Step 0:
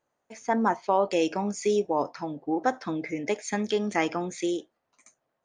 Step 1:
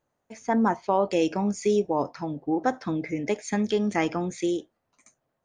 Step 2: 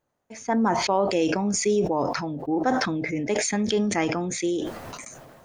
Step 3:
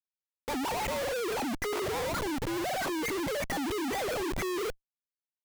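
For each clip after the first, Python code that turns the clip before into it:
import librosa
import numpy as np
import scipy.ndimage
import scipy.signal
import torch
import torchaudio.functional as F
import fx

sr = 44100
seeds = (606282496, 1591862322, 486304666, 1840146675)

y1 = fx.low_shelf(x, sr, hz=200.0, db=11.5)
y1 = y1 * 10.0 ** (-1.0 / 20.0)
y2 = fx.sustainer(y1, sr, db_per_s=31.0)
y3 = fx.sine_speech(y2, sr)
y3 = fx.schmitt(y3, sr, flips_db=-36.0)
y3 = y3 * 10.0 ** (-6.5 / 20.0)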